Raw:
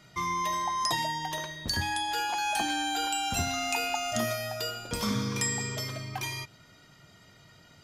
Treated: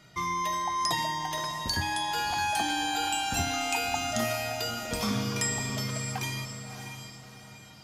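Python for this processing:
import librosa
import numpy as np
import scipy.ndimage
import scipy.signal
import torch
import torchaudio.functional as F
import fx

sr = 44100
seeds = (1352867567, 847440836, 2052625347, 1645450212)

y = fx.echo_diffused(x, sr, ms=622, feedback_pct=43, wet_db=-8.0)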